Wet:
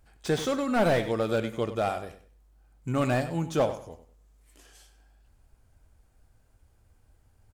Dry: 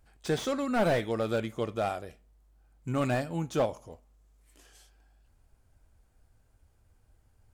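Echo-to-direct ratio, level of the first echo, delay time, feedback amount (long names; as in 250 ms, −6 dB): −12.0 dB, −12.5 dB, 96 ms, 26%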